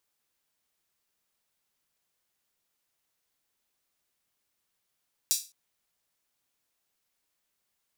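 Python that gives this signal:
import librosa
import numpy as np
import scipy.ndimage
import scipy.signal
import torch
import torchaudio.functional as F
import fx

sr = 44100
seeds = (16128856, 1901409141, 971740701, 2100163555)

y = fx.drum_hat_open(sr, length_s=0.21, from_hz=5100.0, decay_s=0.3)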